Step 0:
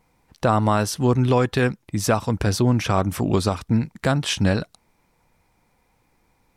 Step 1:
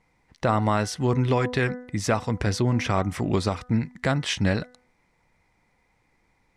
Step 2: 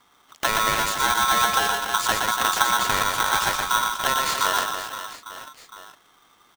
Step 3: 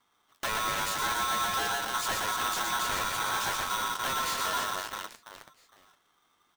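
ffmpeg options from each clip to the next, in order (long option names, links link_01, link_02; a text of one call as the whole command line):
ffmpeg -i in.wav -af "lowpass=8100,equalizer=frequency=2000:width=5.3:gain=9.5,bandreject=frequency=248.7:width_type=h:width=4,bandreject=frequency=497.4:width_type=h:width=4,bandreject=frequency=746.1:width_type=h:width=4,bandreject=frequency=994.8:width_type=h:width=4,bandreject=frequency=1243.5:width_type=h:width=4,bandreject=frequency=1492.2:width_type=h:width=4,bandreject=frequency=1740.9:width_type=h:width=4,bandreject=frequency=1989.6:width_type=h:width=4,volume=-3.5dB" out.wav
ffmpeg -i in.wav -filter_complex "[0:a]acrossover=split=120|480|1400|4200[link_01][link_02][link_03][link_04][link_05];[link_01]acompressor=threshold=-38dB:ratio=4[link_06];[link_02]acompressor=threshold=-31dB:ratio=4[link_07];[link_03]acompressor=threshold=-38dB:ratio=4[link_08];[link_04]acompressor=threshold=-42dB:ratio=4[link_09];[link_05]acompressor=threshold=-36dB:ratio=4[link_10];[link_06][link_07][link_08][link_09][link_10]amix=inputs=5:normalize=0,asplit=2[link_11][link_12];[link_12]aecho=0:1:120|288|523.2|852.5|1313:0.631|0.398|0.251|0.158|0.1[link_13];[link_11][link_13]amix=inputs=2:normalize=0,aeval=exprs='val(0)*sgn(sin(2*PI*1200*n/s))':channel_layout=same,volume=6.5dB" out.wav
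ffmpeg -i in.wav -af "asoftclip=type=tanh:threshold=-22dB,aeval=exprs='0.0794*(cos(1*acos(clip(val(0)/0.0794,-1,1)))-cos(1*PI/2))+0.0158*(cos(7*acos(clip(val(0)/0.0794,-1,1)))-cos(7*PI/2))':channel_layout=same,flanger=delay=8.8:depth=3.7:regen=-49:speed=0.57:shape=sinusoidal" out.wav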